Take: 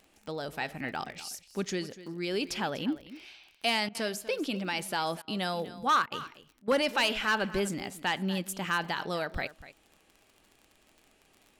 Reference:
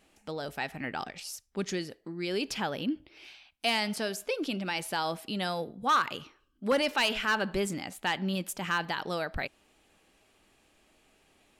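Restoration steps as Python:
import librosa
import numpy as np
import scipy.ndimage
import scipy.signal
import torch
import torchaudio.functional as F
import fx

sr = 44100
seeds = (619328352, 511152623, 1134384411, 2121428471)

y = fx.fix_declick_ar(x, sr, threshold=6.5)
y = fx.fix_interpolate(y, sr, at_s=(3.89, 5.22, 6.06, 6.62), length_ms=56.0)
y = fx.fix_echo_inverse(y, sr, delay_ms=245, level_db=-16.0)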